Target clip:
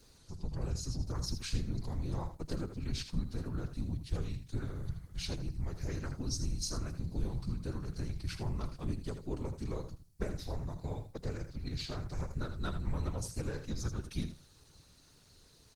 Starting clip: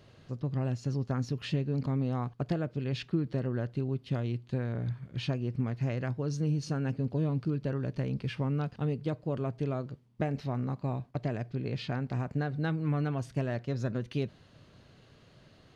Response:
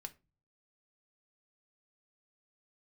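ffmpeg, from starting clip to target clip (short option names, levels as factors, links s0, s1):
-filter_complex "[0:a]aexciter=amount=9.1:drive=2.4:freq=4500,afftfilt=real='hypot(re,im)*cos(2*PI*random(0))':imag='hypot(re,im)*sin(2*PI*random(1))':win_size=512:overlap=0.75,afreqshift=-180,asplit=2[s0][s1];[s1]aecho=0:1:80|160:0.335|0.0536[s2];[s0][s2]amix=inputs=2:normalize=0,volume=1.19" -ar 48000 -c:a libopus -b:a 20k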